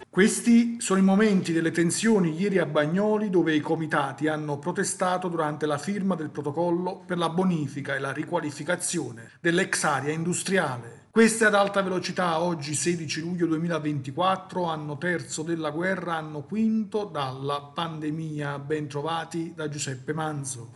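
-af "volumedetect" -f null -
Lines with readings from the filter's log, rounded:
mean_volume: -25.7 dB
max_volume: -7.8 dB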